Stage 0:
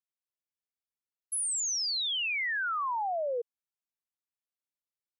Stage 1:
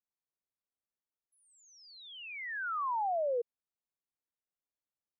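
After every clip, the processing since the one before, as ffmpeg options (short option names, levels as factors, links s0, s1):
-af "lowpass=1200"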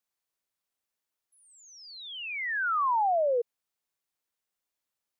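-af "lowshelf=f=470:g=-6,volume=2.66"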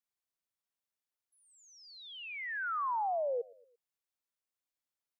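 -af "aecho=1:1:114|228|342:0.0708|0.034|0.0163,volume=0.422"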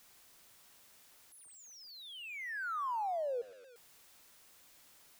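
-af "aeval=exprs='val(0)+0.5*0.00335*sgn(val(0))':c=same,volume=0.668"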